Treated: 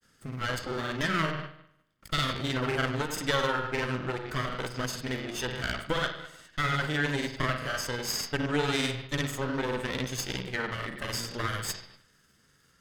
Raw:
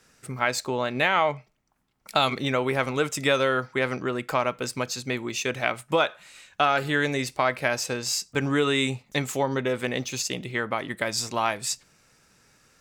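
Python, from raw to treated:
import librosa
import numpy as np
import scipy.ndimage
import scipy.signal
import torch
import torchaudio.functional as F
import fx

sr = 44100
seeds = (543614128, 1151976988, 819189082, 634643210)

y = fx.lower_of_two(x, sr, delay_ms=0.62)
y = fx.echo_bbd(y, sr, ms=63, stages=2048, feedback_pct=56, wet_db=-7)
y = fx.granulator(y, sr, seeds[0], grain_ms=100.0, per_s=20.0, spray_ms=38.0, spread_st=0)
y = y * 10.0 ** (-2.5 / 20.0)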